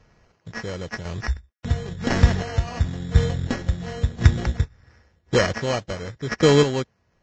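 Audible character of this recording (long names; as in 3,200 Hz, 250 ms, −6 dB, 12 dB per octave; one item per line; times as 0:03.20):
a buzz of ramps at a fixed pitch in blocks of 8 samples
chopped level 0.95 Hz, depth 60%, duty 30%
aliases and images of a low sample rate 3,600 Hz, jitter 0%
Ogg Vorbis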